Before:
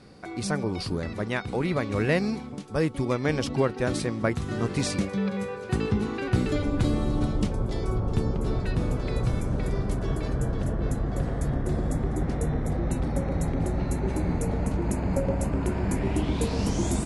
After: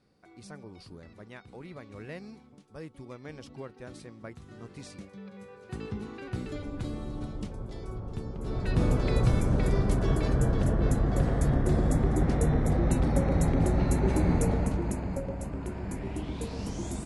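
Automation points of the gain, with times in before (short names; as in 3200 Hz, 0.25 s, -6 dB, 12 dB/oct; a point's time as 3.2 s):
5.27 s -18 dB
5.84 s -11 dB
8.33 s -11 dB
8.82 s +2 dB
14.43 s +2 dB
15.28 s -9 dB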